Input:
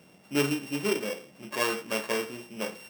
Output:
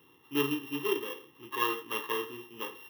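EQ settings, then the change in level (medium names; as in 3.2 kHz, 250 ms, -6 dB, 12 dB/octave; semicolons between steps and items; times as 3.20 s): high-pass 160 Hz 6 dB/octave; static phaser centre 990 Hz, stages 8; static phaser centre 2.3 kHz, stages 6; +4.5 dB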